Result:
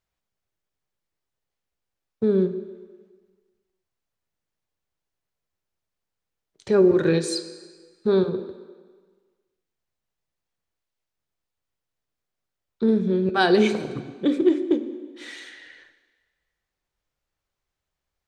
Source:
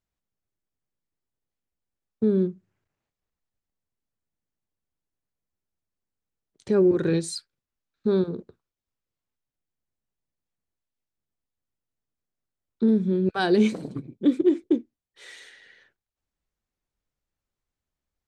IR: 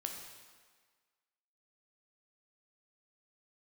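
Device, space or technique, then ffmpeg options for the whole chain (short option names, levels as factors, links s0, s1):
filtered reverb send: -filter_complex "[0:a]asplit=2[s0][s1];[s1]highpass=f=240:w=0.5412,highpass=f=240:w=1.3066,lowpass=7100[s2];[1:a]atrim=start_sample=2205[s3];[s2][s3]afir=irnorm=-1:irlink=0,volume=0.841[s4];[s0][s4]amix=inputs=2:normalize=0,volume=1.19"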